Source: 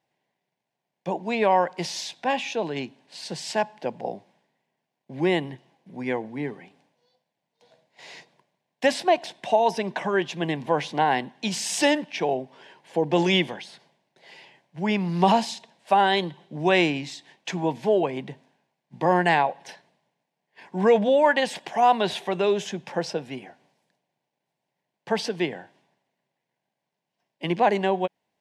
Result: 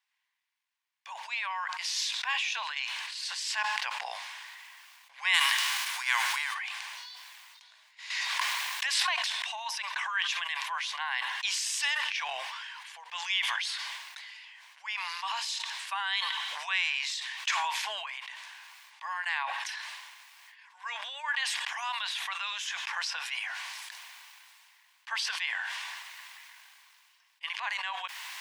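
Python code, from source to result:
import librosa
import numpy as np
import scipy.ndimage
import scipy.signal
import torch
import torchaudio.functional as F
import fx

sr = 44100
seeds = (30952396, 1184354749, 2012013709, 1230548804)

y = fx.envelope_flatten(x, sr, power=0.6, at=(5.33, 6.53), fade=0.02)
y = fx.pre_swell(y, sr, db_per_s=26.0, at=(8.1, 9.47))
y = fx.band_squash(y, sr, depth_pct=70, at=(21.28, 23.4))
y = fx.rider(y, sr, range_db=10, speed_s=0.5)
y = scipy.signal.sosfilt(scipy.signal.ellip(4, 1.0, 70, 1100.0, 'highpass', fs=sr, output='sos'), y)
y = fx.sustainer(y, sr, db_per_s=20.0)
y = y * 10.0 ** (-3.0 / 20.0)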